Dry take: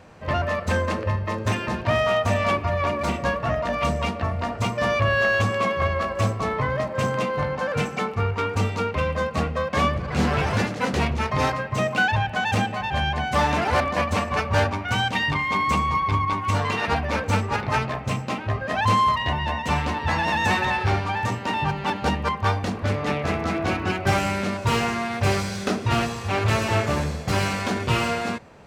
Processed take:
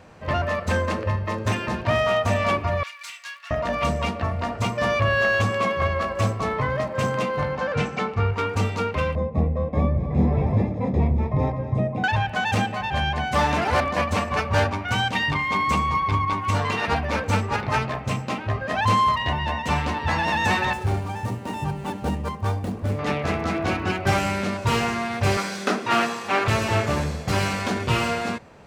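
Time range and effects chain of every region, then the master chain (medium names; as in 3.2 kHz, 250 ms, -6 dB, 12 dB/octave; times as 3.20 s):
2.83–3.51 s: Bessel high-pass 2.6 kHz, order 4 + hard clipper -28 dBFS
7.58–8.33 s: low-pass 6.1 kHz + peaking EQ 62 Hz +5 dB 1.2 oct
9.15–12.04 s: boxcar filter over 30 samples + bass shelf 160 Hz +7 dB + delay 245 ms -13.5 dB
20.73–22.99 s: median filter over 9 samples + peaking EQ 1.8 kHz -9.5 dB 2.7 oct
25.37–26.48 s: high-pass 190 Hz 24 dB/octave + dynamic bell 1.4 kHz, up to +6 dB, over -37 dBFS, Q 0.82
whole clip: none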